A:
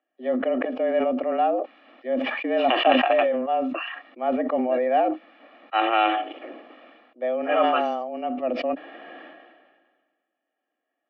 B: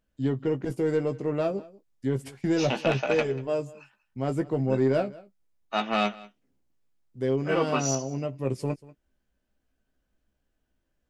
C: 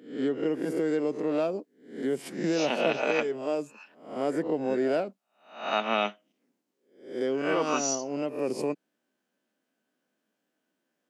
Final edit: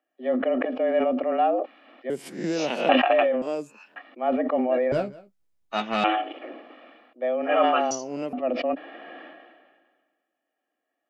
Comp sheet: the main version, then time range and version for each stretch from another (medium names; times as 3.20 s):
A
2.10–2.89 s: from C
3.42–3.96 s: from C
4.92–6.04 s: from B
7.91–8.33 s: from C